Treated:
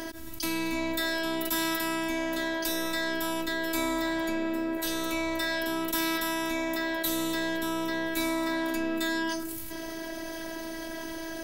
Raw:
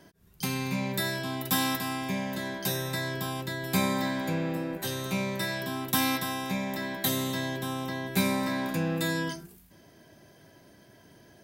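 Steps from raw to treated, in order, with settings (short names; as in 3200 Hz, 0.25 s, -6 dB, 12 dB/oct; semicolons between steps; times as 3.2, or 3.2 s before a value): robotiser 326 Hz; fast leveller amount 70%; gain -2 dB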